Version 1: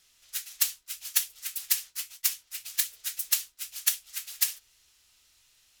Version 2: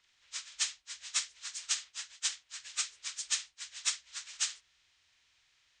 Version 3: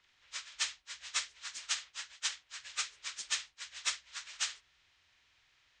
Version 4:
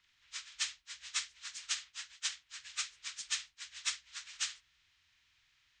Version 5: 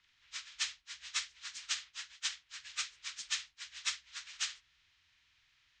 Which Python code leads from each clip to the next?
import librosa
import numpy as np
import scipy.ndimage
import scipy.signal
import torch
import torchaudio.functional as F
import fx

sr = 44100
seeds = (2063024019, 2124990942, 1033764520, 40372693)

y1 = fx.partial_stretch(x, sr, pct=82)
y1 = F.gain(torch.from_numpy(y1), -5.5).numpy()
y2 = fx.lowpass(y1, sr, hz=2500.0, slope=6)
y2 = F.gain(torch.from_numpy(y2), 4.5).numpy()
y3 = fx.peak_eq(y2, sr, hz=550.0, db=-12.5, octaves=1.5)
y3 = F.gain(torch.from_numpy(y3), -1.0).numpy()
y4 = scipy.signal.sosfilt(scipy.signal.butter(2, 7000.0, 'lowpass', fs=sr, output='sos'), y3)
y4 = F.gain(torch.from_numpy(y4), 1.0).numpy()